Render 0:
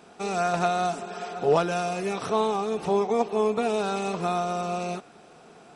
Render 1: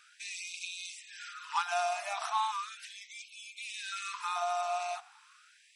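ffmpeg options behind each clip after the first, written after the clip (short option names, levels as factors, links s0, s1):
-af "afftfilt=real='re*gte(b*sr/1024,590*pow(2200/590,0.5+0.5*sin(2*PI*0.37*pts/sr)))':imag='im*gte(b*sr/1024,590*pow(2200/590,0.5+0.5*sin(2*PI*0.37*pts/sr)))':win_size=1024:overlap=0.75,volume=0.794"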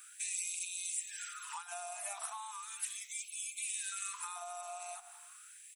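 -af "aecho=1:1:166|332:0.0708|0.0248,acompressor=threshold=0.00794:ratio=6,aexciter=amount=5.7:drive=9.4:freq=7400,volume=0.841"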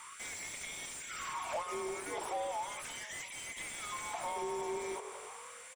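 -filter_complex "[0:a]asplit=5[s0][s1][s2][s3][s4];[s1]adelay=338,afreqshift=45,volume=0.112[s5];[s2]adelay=676,afreqshift=90,volume=0.0603[s6];[s3]adelay=1014,afreqshift=135,volume=0.0327[s7];[s4]adelay=1352,afreqshift=180,volume=0.0176[s8];[s0][s5][s6][s7][s8]amix=inputs=5:normalize=0,afreqshift=-320,asplit=2[s9][s10];[s10]highpass=f=720:p=1,volume=17.8,asoftclip=type=tanh:threshold=0.0668[s11];[s9][s11]amix=inputs=2:normalize=0,lowpass=f=1300:p=1,volume=0.501,volume=0.841"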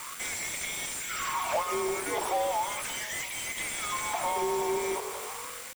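-af "acrusher=bits=7:mix=0:aa=0.000001,volume=2.66"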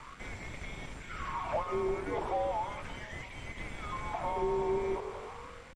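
-filter_complex "[0:a]aemphasis=mode=reproduction:type=riaa,acrossover=split=180|1500|2500[s0][s1][s2][s3];[s3]aeval=exprs='clip(val(0),-1,0.00266)':c=same[s4];[s0][s1][s2][s4]amix=inputs=4:normalize=0,adynamicsmooth=sensitivity=4.5:basefreq=7600,volume=0.562"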